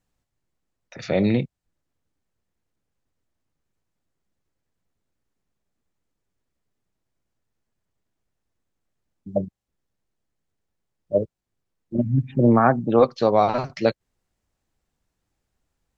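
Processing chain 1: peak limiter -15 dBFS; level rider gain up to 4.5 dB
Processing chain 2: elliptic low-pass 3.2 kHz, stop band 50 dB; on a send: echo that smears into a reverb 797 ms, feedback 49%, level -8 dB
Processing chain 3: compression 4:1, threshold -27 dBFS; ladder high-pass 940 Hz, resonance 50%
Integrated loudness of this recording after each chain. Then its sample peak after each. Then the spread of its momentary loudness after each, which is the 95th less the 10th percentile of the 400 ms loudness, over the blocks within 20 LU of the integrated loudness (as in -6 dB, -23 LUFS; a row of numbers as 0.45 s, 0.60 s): -22.5 LUFS, -23.5 LUFS, -45.0 LUFS; -10.5 dBFS, -4.0 dBFS, -24.5 dBFS; 13 LU, 21 LU, 18 LU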